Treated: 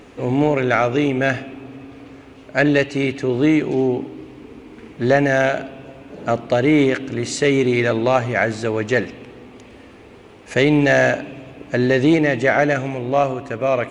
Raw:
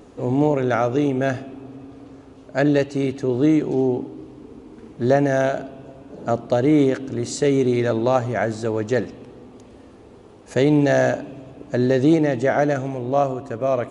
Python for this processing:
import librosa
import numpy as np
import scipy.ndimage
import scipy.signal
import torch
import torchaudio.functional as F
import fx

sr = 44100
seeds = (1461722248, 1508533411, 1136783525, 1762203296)

p1 = fx.peak_eq(x, sr, hz=2300.0, db=12.0, octaves=1.2)
p2 = 10.0 ** (-11.0 / 20.0) * np.tanh(p1 / 10.0 ** (-11.0 / 20.0))
p3 = p1 + (p2 * librosa.db_to_amplitude(-6.0))
p4 = fx.quant_dither(p3, sr, seeds[0], bits=12, dither='none')
y = p4 * librosa.db_to_amplitude(-2.0)